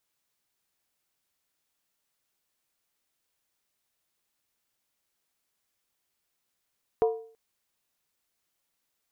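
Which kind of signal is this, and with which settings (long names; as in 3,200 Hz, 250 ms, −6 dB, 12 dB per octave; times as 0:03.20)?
struck skin length 0.33 s, lowest mode 449 Hz, decay 0.48 s, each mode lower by 8 dB, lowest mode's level −17.5 dB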